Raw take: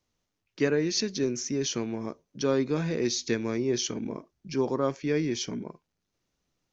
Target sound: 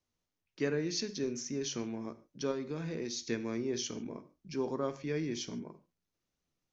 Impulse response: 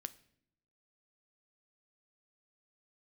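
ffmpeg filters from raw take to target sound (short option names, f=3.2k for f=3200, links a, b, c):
-filter_complex "[0:a]asettb=1/sr,asplit=3[a][b][c];[a]atrim=end=2.514[d];[b]atrim=start=2.51:end=3.17,asetpts=PTS-STARTPTS,afade=t=in:d=0.004:c=qsin,afade=t=out:st=0.656:d=0.004:c=qsin,acompressor=threshold=-27dB:ratio=3[e];[c]atrim=start=3.166[f];[d][e]acrossfade=d=0.004:c1=hsin:c2=qsin[g];[g][f]acrossfade=d=0.004:c1=qsin:c2=hsin[h];[1:a]atrim=start_sample=2205,atrim=end_sample=4410,asetrate=28224,aresample=44100[i];[h][i]afir=irnorm=-1:irlink=0,volume=-6dB"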